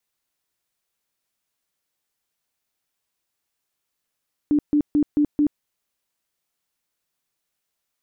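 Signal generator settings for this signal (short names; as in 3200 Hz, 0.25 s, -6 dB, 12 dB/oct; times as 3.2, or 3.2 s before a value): tone bursts 295 Hz, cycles 23, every 0.22 s, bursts 5, -14.5 dBFS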